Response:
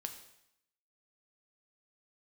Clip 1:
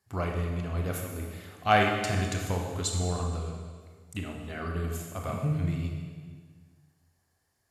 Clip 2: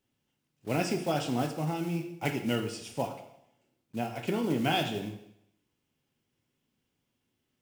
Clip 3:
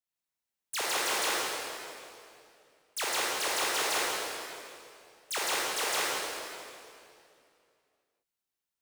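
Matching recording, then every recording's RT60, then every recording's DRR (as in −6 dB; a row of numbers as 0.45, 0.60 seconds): 2; 1.7, 0.80, 2.5 seconds; 1.0, 5.0, −6.0 decibels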